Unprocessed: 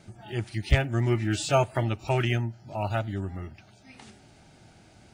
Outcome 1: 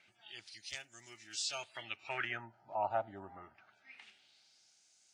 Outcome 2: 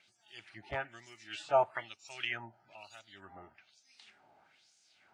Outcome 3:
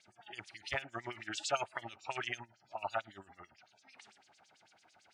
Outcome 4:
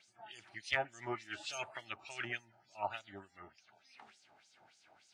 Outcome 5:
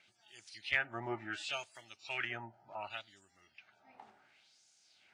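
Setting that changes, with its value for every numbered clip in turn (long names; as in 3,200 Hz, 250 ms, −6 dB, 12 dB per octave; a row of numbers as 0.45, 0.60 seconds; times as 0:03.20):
auto-filter band-pass, speed: 0.25, 1.1, 9, 3.4, 0.69 Hertz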